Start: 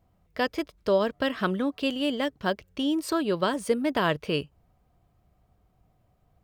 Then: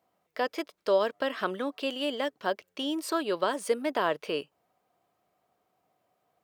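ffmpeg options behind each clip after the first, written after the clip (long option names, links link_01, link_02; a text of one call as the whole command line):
ffmpeg -i in.wav -filter_complex "[0:a]highpass=400,acrossover=split=1300[link_01][link_02];[link_02]alimiter=level_in=3dB:limit=-24dB:level=0:latency=1:release=46,volume=-3dB[link_03];[link_01][link_03]amix=inputs=2:normalize=0" out.wav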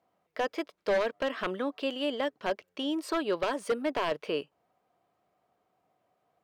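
ffmpeg -i in.wav -af "aeval=exprs='0.0944*(abs(mod(val(0)/0.0944+3,4)-2)-1)':channel_layout=same,aemphasis=mode=reproduction:type=cd" out.wav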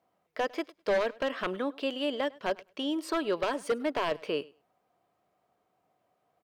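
ffmpeg -i in.wav -af "aecho=1:1:102|204:0.0708|0.0106" out.wav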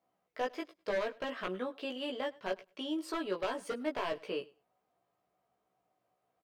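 ffmpeg -i in.wav -filter_complex "[0:a]asplit=2[link_01][link_02];[link_02]adelay=16,volume=-2.5dB[link_03];[link_01][link_03]amix=inputs=2:normalize=0,volume=-7.5dB" out.wav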